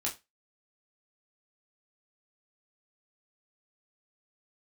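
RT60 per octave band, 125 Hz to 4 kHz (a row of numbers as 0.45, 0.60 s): 0.20, 0.20, 0.20, 0.20, 0.20, 0.20 s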